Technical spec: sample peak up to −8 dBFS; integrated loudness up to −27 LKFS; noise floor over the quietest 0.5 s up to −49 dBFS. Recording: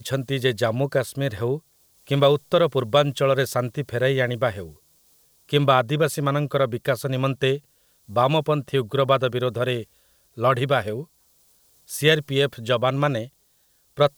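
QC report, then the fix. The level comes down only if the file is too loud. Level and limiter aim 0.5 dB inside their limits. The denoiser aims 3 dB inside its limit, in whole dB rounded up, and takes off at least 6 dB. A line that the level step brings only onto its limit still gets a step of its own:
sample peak −4.0 dBFS: out of spec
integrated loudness −22.5 LKFS: out of spec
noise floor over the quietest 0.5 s −63 dBFS: in spec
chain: level −5 dB

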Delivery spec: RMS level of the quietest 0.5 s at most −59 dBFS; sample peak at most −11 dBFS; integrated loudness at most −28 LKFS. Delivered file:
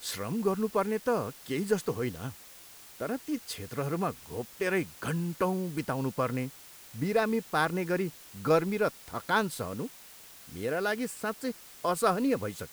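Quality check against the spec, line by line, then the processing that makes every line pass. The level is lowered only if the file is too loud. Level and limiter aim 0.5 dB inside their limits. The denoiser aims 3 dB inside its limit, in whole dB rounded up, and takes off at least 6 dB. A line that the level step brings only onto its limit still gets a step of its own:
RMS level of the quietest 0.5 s −51 dBFS: out of spec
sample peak −12.5 dBFS: in spec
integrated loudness −31.5 LKFS: in spec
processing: broadband denoise 11 dB, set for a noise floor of −51 dBFS

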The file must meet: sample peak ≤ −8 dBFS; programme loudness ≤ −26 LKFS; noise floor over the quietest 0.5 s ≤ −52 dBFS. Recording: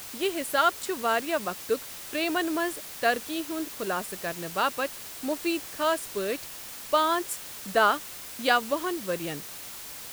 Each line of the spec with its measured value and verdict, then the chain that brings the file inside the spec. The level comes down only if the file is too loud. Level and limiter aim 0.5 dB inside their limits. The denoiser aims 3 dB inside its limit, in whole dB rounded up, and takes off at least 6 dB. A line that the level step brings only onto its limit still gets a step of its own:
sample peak −9.5 dBFS: in spec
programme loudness −28.5 LKFS: in spec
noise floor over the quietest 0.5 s −41 dBFS: out of spec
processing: broadband denoise 14 dB, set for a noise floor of −41 dBFS

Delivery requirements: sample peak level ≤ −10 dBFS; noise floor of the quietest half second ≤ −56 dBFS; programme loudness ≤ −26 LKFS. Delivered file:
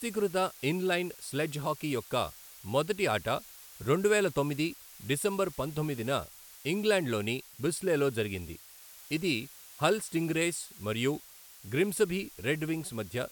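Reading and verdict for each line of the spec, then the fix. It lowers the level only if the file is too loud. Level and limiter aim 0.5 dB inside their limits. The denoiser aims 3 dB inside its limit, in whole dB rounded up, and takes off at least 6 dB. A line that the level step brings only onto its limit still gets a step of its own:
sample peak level −12.0 dBFS: in spec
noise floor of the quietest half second −52 dBFS: out of spec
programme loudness −31.5 LKFS: in spec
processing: broadband denoise 7 dB, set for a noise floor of −52 dBFS

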